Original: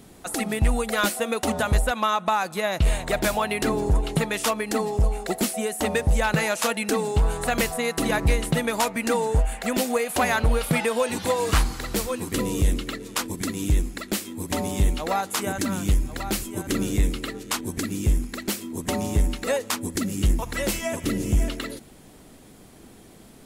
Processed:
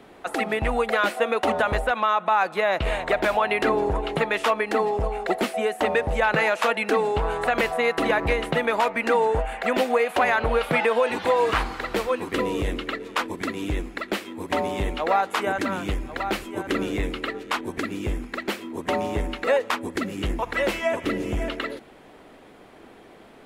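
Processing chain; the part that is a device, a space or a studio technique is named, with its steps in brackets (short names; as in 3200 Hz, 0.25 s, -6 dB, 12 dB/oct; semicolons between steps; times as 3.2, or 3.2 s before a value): DJ mixer with the lows and highs turned down (three-band isolator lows -14 dB, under 340 Hz, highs -20 dB, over 3200 Hz; limiter -17 dBFS, peak gain reduction 6 dB); gain +6 dB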